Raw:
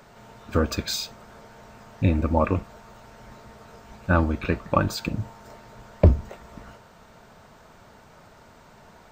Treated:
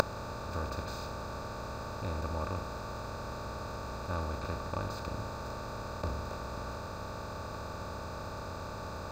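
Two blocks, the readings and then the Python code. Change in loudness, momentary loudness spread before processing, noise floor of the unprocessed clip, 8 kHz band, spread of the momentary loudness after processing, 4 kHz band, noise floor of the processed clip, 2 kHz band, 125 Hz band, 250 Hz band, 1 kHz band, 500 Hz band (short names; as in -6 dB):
-14.5 dB, 16 LU, -52 dBFS, -9.5 dB, 5 LU, -9.5 dB, -41 dBFS, -8.0 dB, -12.0 dB, -14.0 dB, -5.5 dB, -9.5 dB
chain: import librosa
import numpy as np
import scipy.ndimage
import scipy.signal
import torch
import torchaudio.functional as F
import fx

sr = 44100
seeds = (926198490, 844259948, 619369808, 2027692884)

y = fx.bin_compress(x, sr, power=0.2)
y = fx.peak_eq(y, sr, hz=910.0, db=4.0, octaves=1.1)
y = fx.gate_flip(y, sr, shuts_db=-8.0, range_db=-24)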